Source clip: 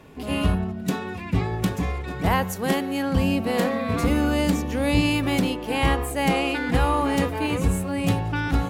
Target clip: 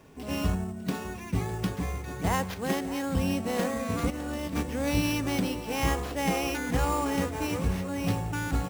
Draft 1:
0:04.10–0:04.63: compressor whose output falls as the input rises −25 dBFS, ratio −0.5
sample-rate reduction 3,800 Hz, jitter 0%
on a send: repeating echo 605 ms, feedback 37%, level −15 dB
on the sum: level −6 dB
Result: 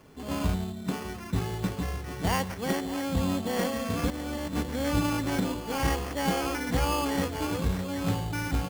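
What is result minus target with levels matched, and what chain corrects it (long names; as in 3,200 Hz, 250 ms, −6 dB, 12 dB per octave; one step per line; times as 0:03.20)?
sample-rate reduction: distortion +4 dB
0:04.10–0:04.63: compressor whose output falls as the input rises −25 dBFS, ratio −0.5
sample-rate reduction 8,300 Hz, jitter 0%
on a send: repeating echo 605 ms, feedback 37%, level −15 dB
on the sum: level −6 dB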